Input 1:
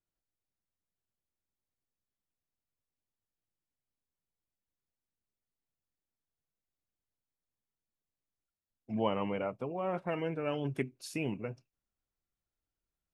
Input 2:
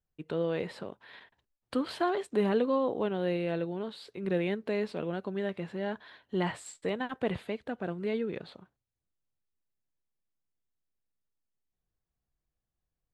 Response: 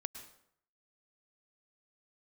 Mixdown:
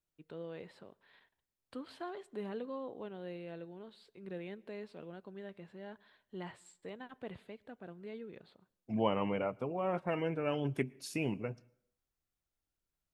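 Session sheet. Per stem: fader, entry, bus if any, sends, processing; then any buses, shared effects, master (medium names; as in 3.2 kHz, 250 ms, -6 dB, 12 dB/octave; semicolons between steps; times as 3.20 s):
-1.0 dB, 0.00 s, send -15.5 dB, none
-15.0 dB, 0.00 s, send -15.5 dB, none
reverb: on, RT60 0.70 s, pre-delay 98 ms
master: none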